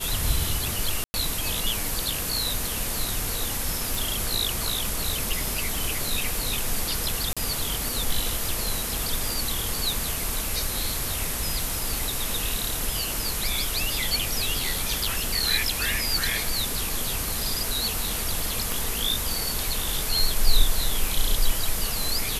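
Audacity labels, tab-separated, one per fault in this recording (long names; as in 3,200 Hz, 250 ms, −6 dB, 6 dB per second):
1.040000	1.140000	drop-out 100 ms
3.950000	3.950000	click
7.330000	7.370000	drop-out 36 ms
18.720000	18.720000	click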